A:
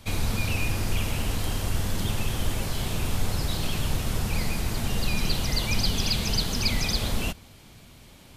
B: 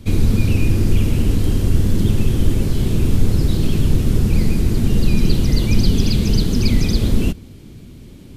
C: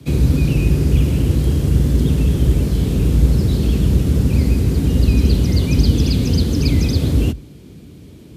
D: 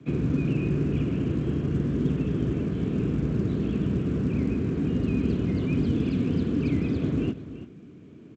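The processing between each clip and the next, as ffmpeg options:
-af "lowshelf=f=510:t=q:w=1.5:g=12"
-af "afreqshift=47,volume=-1dB"
-af "highpass=170,equalizer=f=540:t=q:w=4:g=-6,equalizer=f=850:t=q:w=4:g=-8,equalizer=f=2k:t=q:w=4:g=-5,lowpass=f=2.4k:w=0.5412,lowpass=f=2.4k:w=1.3066,aecho=1:1:336:0.211,volume=-4dB" -ar 16000 -c:a pcm_mulaw

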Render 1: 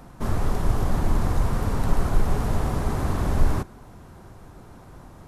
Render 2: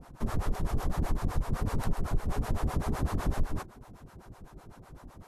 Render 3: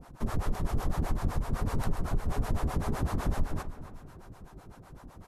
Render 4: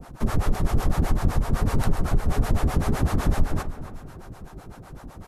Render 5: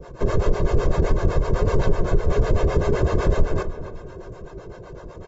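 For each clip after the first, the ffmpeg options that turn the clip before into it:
-filter_complex "[0:a]acrossover=split=480[a][b];[a]aeval=exprs='val(0)*(1-1/2+1/2*cos(2*PI*7.9*n/s))':c=same[c];[b]aeval=exprs='val(0)*(1-1/2-1/2*cos(2*PI*7.9*n/s))':c=same[d];[c][d]amix=inputs=2:normalize=0,acompressor=threshold=-23dB:ratio=6"
-filter_complex "[0:a]asplit=2[a][b];[b]adelay=274,lowpass=f=2k:p=1,volume=-11.5dB,asplit=2[c][d];[d]adelay=274,lowpass=f=2k:p=1,volume=0.34,asplit=2[e][f];[f]adelay=274,lowpass=f=2k:p=1,volume=0.34,asplit=2[g][h];[h]adelay=274,lowpass=f=2k:p=1,volume=0.34[i];[a][c][e][g][i]amix=inputs=5:normalize=0"
-filter_complex "[0:a]bandreject=f=1k:w=18,acrossover=split=360|1300[a][b][c];[b]asoftclip=type=hard:threshold=-39.5dB[d];[a][d][c]amix=inputs=3:normalize=0,volume=8dB"
-af "equalizer=f=380:t=o:w=1.2:g=12.5,aecho=1:1:1.9:0.74,volume=-2.5dB" -ar 44100 -c:a aac -b:a 24k

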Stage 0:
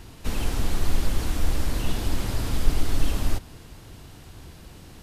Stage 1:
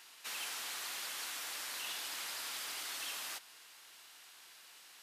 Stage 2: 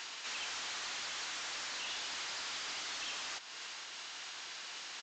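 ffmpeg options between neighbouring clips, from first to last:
-af "highpass=1.4k,volume=-3dB"
-af "asoftclip=type=tanh:threshold=-39dB,alimiter=level_in=24.5dB:limit=-24dB:level=0:latency=1:release=294,volume=-24.5dB,aresample=16000,aresample=44100,volume=14dB"

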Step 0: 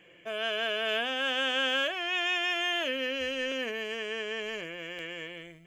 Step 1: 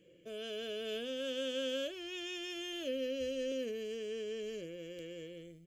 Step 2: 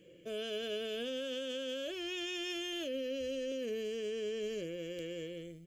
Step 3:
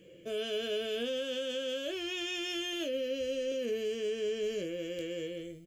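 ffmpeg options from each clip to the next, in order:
-af "firequalizer=gain_entry='entry(540,0);entry(770,-27);entry(1300,-17);entry(1800,-19);entry(4200,-2)':delay=0.05:min_phase=1,volume=-2dB"
-af "alimiter=level_in=11dB:limit=-24dB:level=0:latency=1:release=27,volume=-11dB,volume=4.5dB"
-filter_complex "[0:a]asplit=2[a][b];[b]adelay=21,volume=-8dB[c];[a][c]amix=inputs=2:normalize=0,volume=3dB"

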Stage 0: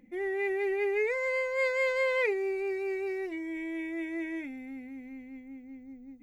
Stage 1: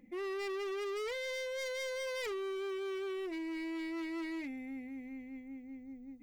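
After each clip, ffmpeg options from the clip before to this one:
-af "bandreject=f=1.5k:w=8.1,asoftclip=type=hard:threshold=-35.5dB,volume=-1.5dB"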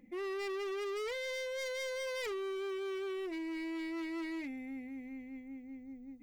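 -af anull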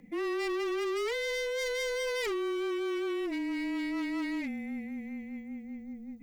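-af "afreqshift=-21,volume=6dB"

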